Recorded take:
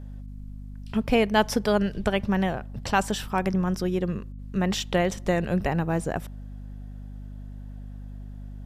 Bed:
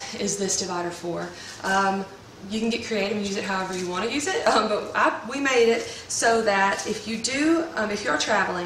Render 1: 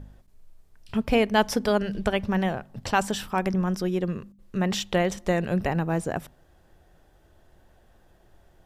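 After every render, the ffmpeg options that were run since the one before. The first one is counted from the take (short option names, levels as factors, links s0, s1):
-af "bandreject=f=50:t=h:w=4,bandreject=f=100:t=h:w=4,bandreject=f=150:t=h:w=4,bandreject=f=200:t=h:w=4,bandreject=f=250:t=h:w=4"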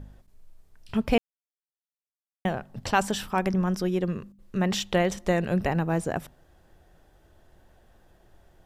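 -filter_complex "[0:a]asplit=3[s0][s1][s2];[s0]atrim=end=1.18,asetpts=PTS-STARTPTS,afade=t=out:st=1.176:d=0.004:c=hsin[s3];[s1]atrim=start=1.18:end=2.45,asetpts=PTS-STARTPTS,volume=0[s4];[s2]atrim=start=2.45,asetpts=PTS-STARTPTS,afade=t=in:d=0.004:c=hsin[s5];[s3][s4][s5]concat=n=3:v=0:a=1"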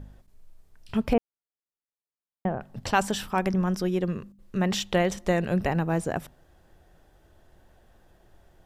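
-filter_complex "[0:a]asettb=1/sr,asplit=3[s0][s1][s2];[s0]atrim=end=1.134[s3];[s1]atrim=start=1.13:end=2.61,asetpts=PTS-STARTPTS,afade=t=in:d=0.004:c=qsin,afade=t=out:st=1.476:d=0.004:c=qsin,lowpass=1200[s4];[s2]atrim=start=2.606[s5];[s3][s4]acrossfade=d=0.004:c1=hsin:c2=qsin[s6];[s6][s5]acrossfade=d=0.004:c1=qsin:c2=hsin"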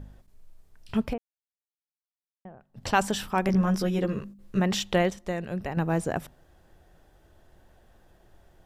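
-filter_complex "[0:a]asettb=1/sr,asplit=3[s0][s1][s2];[s0]atrim=end=3.474[s3];[s1]atrim=start=3.47:end=4.6,asetpts=PTS-STARTPTS,afade=t=in:d=0.004:c=qsin,afade=t=out:st=1.126:d=0.004:c=qsin,asplit=2[s4][s5];[s5]adelay=15,volume=0.794[s6];[s4][s6]amix=inputs=2:normalize=0,atrim=end_sample=49833[s7];[s2]atrim=start=4.596[s8];[s3][s7]acrossfade=d=0.004:c1=hsin:c2=qsin[s9];[s9][s8]acrossfade=d=0.004:c1=qsin:c2=hsin,asplit=5[s10][s11][s12][s13][s14];[s10]atrim=end=1.18,asetpts=PTS-STARTPTS,afade=t=out:st=1.03:d=0.15:silence=0.125893[s15];[s11]atrim=start=1.18:end=2.73,asetpts=PTS-STARTPTS,volume=0.126[s16];[s12]atrim=start=2.73:end=5.102,asetpts=PTS-STARTPTS,afade=t=in:d=0.15:silence=0.125893[s17];[s13]atrim=start=5.098:end=5.772,asetpts=PTS-STARTPTS,volume=0.447[s18];[s14]atrim=start=5.768[s19];[s15][s16][s17]concat=n=3:v=0:a=1[s20];[s20][s18]acrossfade=d=0.004:c1=hsin:c2=hsin[s21];[s21][s19]acrossfade=d=0.004:c1=hsin:c2=hsin"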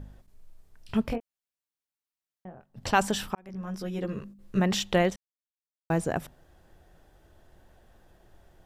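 -filter_complex "[0:a]asettb=1/sr,asplit=3[s0][s1][s2];[s0]atrim=end=1.034[s3];[s1]atrim=start=1.03:end=2.65,asetpts=PTS-STARTPTS,afade=t=in:d=0.004:c=qsin,afade=t=out:st=1.616:d=0.004:c=qsin,asplit=2[s4][s5];[s5]adelay=22,volume=0.501[s6];[s4][s6]amix=inputs=2:normalize=0,atrim=end_sample=71442[s7];[s2]atrim=start=2.646[s8];[s3][s7]acrossfade=d=0.004:c1=hsin:c2=qsin[s9];[s9][s8]acrossfade=d=0.004:c1=qsin:c2=hsin,asplit=4[s10][s11][s12][s13];[s10]atrim=end=3.35,asetpts=PTS-STARTPTS,afade=t=out:st=3.346:d=0.004:c=hsin[s14];[s11]atrim=start=3.35:end=5.16,asetpts=PTS-STARTPTS,afade=t=in:d=1.26,afade=t=out:st=1.806:d=0.004:c=hsin[s15];[s12]atrim=start=5.16:end=5.9,asetpts=PTS-STARTPTS,volume=0[s16];[s13]atrim=start=5.9,asetpts=PTS-STARTPTS,afade=t=in:d=0.004:c=hsin[s17];[s14][s15][s16][s17]concat=n=4:v=0:a=1"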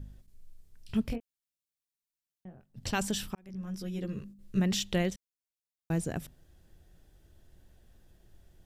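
-af "equalizer=f=900:t=o:w=2.4:g=-12.5"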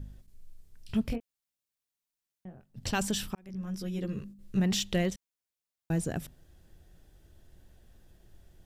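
-af "aeval=exprs='0.15*(cos(1*acos(clip(val(0)/0.15,-1,1)))-cos(1*PI/2))+0.0075*(cos(5*acos(clip(val(0)/0.15,-1,1)))-cos(5*PI/2))':c=same"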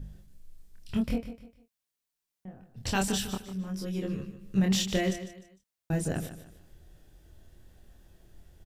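-filter_complex "[0:a]asplit=2[s0][s1];[s1]adelay=26,volume=0.708[s2];[s0][s2]amix=inputs=2:normalize=0,aecho=1:1:151|302|453:0.251|0.0854|0.029"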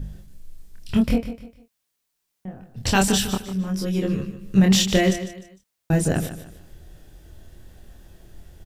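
-af "volume=2.99"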